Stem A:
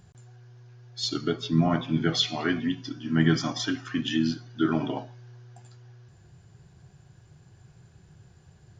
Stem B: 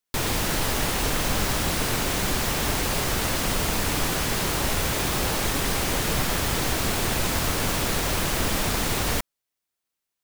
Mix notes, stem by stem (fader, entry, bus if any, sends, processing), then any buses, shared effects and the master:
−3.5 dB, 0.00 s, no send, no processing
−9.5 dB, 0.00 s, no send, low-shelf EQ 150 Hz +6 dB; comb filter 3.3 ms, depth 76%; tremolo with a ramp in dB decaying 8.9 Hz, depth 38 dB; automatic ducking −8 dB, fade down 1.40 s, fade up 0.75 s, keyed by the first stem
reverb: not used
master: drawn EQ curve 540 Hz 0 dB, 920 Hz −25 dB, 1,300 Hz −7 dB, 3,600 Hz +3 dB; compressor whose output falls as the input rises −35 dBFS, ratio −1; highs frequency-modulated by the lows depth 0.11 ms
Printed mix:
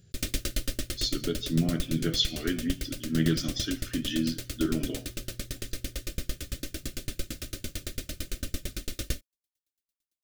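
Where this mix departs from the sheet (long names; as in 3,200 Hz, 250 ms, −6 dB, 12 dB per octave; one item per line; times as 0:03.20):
stem B −9.5 dB → +0.5 dB
master: missing compressor whose output falls as the input rises −35 dBFS, ratio −1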